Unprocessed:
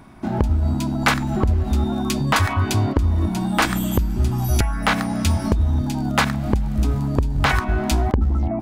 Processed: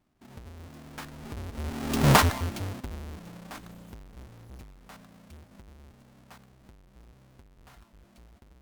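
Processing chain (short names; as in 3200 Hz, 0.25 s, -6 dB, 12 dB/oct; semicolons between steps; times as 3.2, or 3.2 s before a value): half-waves squared off; Doppler pass-by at 2.1, 27 m/s, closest 1.4 m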